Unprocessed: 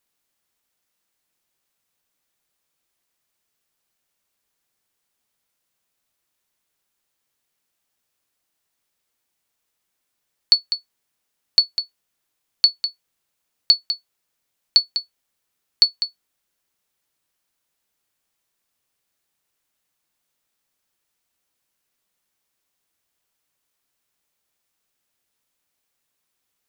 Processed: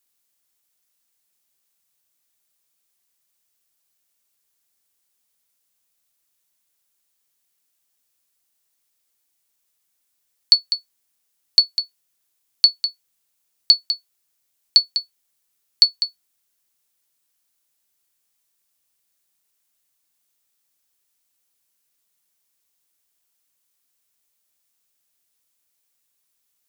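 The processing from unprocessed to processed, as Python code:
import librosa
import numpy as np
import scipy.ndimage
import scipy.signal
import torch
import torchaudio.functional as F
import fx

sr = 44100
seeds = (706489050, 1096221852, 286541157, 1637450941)

y = fx.high_shelf(x, sr, hz=4000.0, db=11.0)
y = y * 10.0 ** (-4.5 / 20.0)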